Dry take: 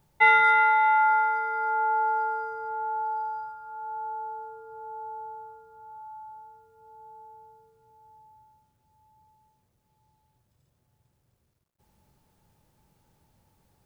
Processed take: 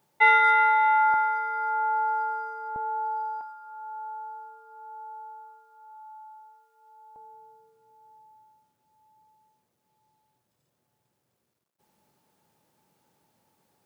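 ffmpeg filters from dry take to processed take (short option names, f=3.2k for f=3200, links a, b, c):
-af "asetnsamples=n=441:p=0,asendcmd='1.14 highpass f 600;2.76 highpass f 240;3.41 highpass f 860;7.16 highpass f 220',highpass=250"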